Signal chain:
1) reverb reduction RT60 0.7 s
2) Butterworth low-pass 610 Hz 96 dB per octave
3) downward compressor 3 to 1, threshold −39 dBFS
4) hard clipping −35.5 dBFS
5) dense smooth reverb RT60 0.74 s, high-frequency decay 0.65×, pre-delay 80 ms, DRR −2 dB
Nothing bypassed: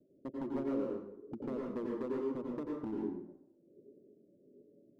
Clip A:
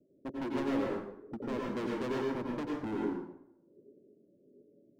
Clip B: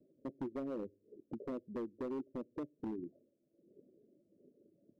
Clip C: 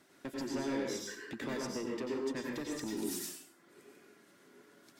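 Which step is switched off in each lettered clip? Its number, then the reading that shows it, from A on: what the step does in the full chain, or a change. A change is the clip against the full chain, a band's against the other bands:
3, average gain reduction 10.0 dB
5, change in crest factor −5.5 dB
2, 2 kHz band +14.0 dB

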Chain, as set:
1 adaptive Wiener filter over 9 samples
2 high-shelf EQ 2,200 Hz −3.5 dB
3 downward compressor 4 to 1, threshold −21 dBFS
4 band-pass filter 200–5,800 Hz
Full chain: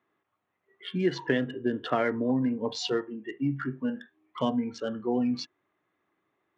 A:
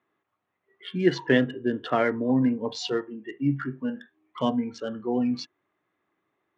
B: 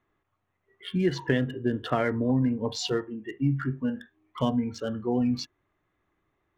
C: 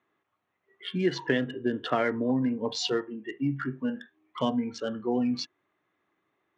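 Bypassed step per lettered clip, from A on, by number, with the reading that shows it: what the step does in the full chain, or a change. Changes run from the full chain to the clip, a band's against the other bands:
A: 3, 4 kHz band −2.0 dB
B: 4, 125 Hz band +7.0 dB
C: 2, 4 kHz band +2.5 dB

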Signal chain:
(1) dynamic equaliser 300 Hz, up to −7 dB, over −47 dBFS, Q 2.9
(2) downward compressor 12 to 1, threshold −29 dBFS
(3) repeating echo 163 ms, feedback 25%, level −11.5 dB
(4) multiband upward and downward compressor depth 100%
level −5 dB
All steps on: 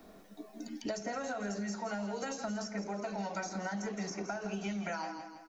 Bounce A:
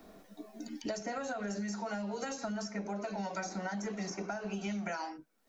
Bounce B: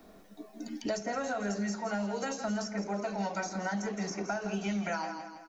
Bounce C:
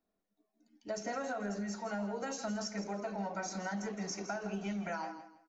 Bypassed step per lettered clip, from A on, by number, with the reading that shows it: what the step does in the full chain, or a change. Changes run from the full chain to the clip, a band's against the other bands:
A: 3, change in momentary loudness spread +2 LU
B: 2, average gain reduction 3.0 dB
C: 4, change in momentary loudness spread −3 LU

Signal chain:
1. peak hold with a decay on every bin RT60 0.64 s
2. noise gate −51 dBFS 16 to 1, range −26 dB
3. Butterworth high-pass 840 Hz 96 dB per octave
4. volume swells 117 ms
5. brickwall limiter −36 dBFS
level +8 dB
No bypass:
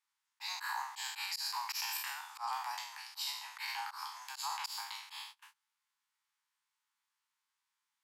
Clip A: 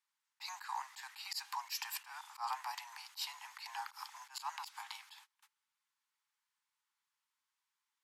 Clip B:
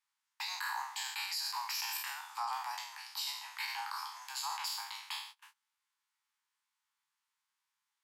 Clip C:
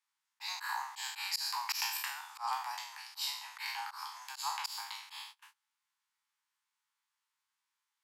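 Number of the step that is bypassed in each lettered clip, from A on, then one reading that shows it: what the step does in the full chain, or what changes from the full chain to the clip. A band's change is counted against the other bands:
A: 1, 1 kHz band +3.0 dB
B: 4, change in momentary loudness spread −2 LU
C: 5, change in crest factor +7.5 dB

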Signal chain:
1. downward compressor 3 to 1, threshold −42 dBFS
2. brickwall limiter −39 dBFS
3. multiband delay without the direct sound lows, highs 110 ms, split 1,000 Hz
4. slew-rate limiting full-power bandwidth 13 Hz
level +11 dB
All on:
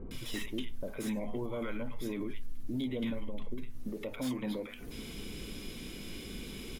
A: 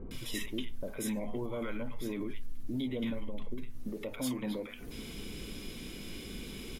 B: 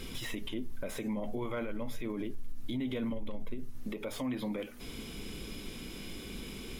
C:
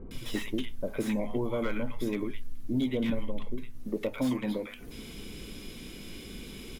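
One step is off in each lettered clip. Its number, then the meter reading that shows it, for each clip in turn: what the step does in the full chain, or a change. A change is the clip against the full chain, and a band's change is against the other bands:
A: 4, distortion level −22 dB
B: 3, change in crest factor −3.5 dB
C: 2, average gain reduction 2.5 dB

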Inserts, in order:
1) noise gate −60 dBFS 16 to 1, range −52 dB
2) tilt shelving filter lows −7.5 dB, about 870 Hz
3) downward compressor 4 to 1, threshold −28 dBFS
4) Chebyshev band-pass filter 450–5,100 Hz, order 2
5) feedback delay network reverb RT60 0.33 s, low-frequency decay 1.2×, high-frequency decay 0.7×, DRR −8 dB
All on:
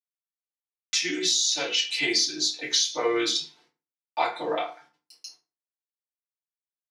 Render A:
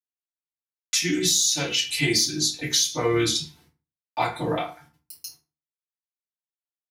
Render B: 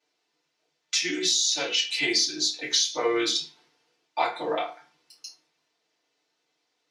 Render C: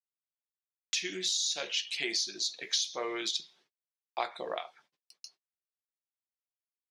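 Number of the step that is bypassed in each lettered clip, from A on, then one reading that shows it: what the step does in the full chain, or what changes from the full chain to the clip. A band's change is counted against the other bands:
4, 125 Hz band +19.5 dB
1, change in momentary loudness spread +4 LU
5, change in momentary loudness spread +4 LU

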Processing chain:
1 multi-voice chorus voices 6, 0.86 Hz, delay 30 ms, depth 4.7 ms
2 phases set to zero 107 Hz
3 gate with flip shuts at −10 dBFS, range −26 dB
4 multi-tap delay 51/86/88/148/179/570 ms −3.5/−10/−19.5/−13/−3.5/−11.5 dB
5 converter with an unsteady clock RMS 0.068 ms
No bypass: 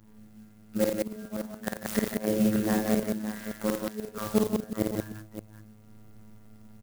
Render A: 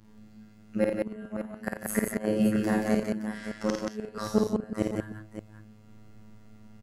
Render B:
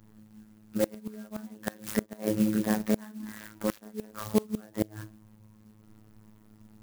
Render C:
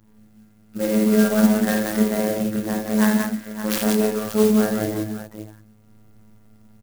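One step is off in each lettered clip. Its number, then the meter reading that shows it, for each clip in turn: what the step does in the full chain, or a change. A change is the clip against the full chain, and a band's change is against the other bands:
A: 5, 4 kHz band −3.0 dB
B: 4, change in crest factor +2.5 dB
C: 3, change in crest factor −3.5 dB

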